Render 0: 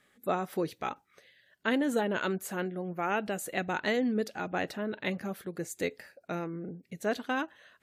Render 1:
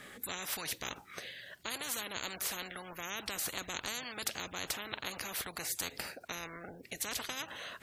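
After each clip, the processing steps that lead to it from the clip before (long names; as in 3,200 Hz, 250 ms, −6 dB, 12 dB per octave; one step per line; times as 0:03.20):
every bin compressed towards the loudest bin 10 to 1
level −3.5 dB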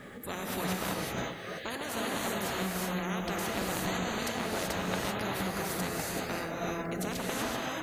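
tilt shelving filter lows +7.5 dB, about 1,500 Hz
background noise blue −77 dBFS
reverb whose tail is shaped and stops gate 410 ms rising, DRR −3.5 dB
level +1.5 dB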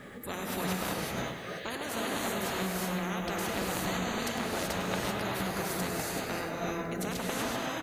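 repeating echo 103 ms, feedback 52%, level −11.5 dB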